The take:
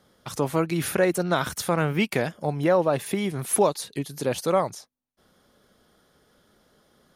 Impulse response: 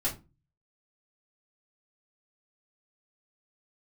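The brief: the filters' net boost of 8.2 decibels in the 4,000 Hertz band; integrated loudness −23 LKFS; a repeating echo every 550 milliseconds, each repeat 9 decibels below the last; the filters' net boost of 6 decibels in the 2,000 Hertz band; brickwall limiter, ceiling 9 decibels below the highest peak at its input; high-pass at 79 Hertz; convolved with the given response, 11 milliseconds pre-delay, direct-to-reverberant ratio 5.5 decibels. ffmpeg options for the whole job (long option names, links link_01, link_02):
-filter_complex "[0:a]highpass=79,equalizer=frequency=2000:width_type=o:gain=5.5,equalizer=frequency=4000:width_type=o:gain=8.5,alimiter=limit=-13.5dB:level=0:latency=1,aecho=1:1:550|1100|1650|2200:0.355|0.124|0.0435|0.0152,asplit=2[link_01][link_02];[1:a]atrim=start_sample=2205,adelay=11[link_03];[link_02][link_03]afir=irnorm=-1:irlink=0,volume=-11.5dB[link_04];[link_01][link_04]amix=inputs=2:normalize=0,volume=1.5dB"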